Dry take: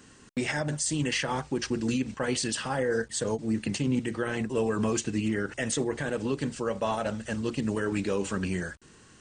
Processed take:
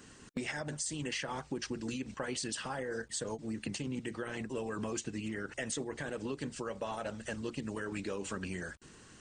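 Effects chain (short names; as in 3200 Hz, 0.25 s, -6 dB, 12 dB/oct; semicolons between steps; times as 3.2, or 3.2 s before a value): harmonic-percussive split harmonic -6 dB; compressor 2.5:1, threshold -40 dBFS, peak gain reduction 10 dB; gain +1.5 dB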